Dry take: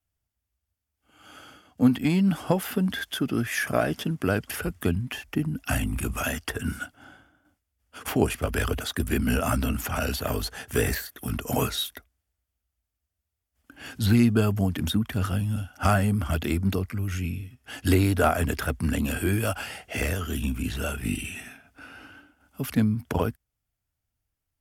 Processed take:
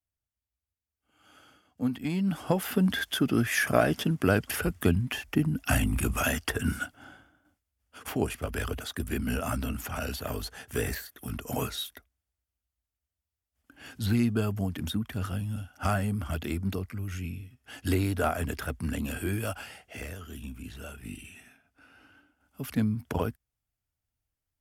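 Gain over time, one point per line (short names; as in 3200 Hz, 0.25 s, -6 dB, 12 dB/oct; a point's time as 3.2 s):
1.93 s -9.5 dB
2.86 s +1 dB
6.83 s +1 dB
8.11 s -6 dB
19.49 s -6 dB
20.08 s -12.5 dB
21.87 s -12.5 dB
22.86 s -4 dB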